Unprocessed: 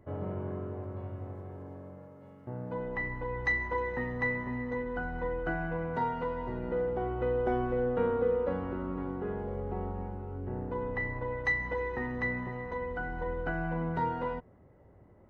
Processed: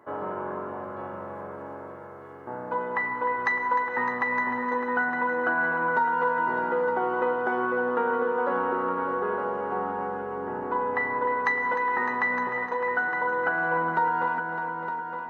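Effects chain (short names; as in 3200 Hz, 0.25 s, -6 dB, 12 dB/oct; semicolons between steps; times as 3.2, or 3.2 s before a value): HPF 340 Hz 12 dB/oct; band shelf 1200 Hz +9 dB 1.2 oct; compressor, threshold -29 dBFS, peak gain reduction 9.5 dB; multi-head echo 0.304 s, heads all three, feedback 41%, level -11 dB; gain +6.5 dB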